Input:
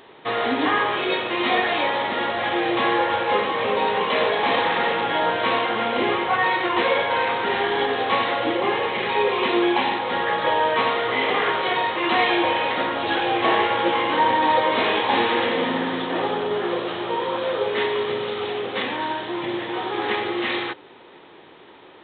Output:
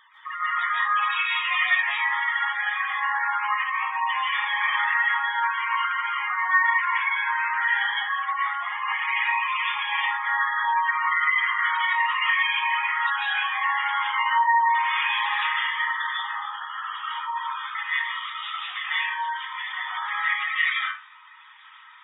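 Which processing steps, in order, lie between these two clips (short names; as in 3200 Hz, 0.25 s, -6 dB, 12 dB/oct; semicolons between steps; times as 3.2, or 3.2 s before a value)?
formant sharpening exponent 1.5; inverse Chebyshev high-pass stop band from 560 Hz, stop band 40 dB; spectral gate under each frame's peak -10 dB strong; 8.02–8.66 LPF 1700 Hz 6 dB/oct; limiter -22.5 dBFS, peak gain reduction 7 dB; reverb RT60 0.40 s, pre-delay 0.12 s, DRR -7 dB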